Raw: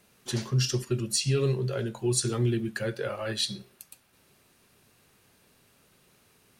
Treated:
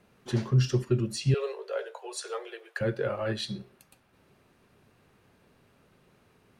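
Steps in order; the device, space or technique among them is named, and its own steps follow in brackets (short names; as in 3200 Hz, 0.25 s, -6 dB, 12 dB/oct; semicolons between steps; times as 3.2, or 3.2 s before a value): through cloth (high shelf 3400 Hz -17 dB); 1.34–2.81 steep high-pass 440 Hz 72 dB/oct; gain +3 dB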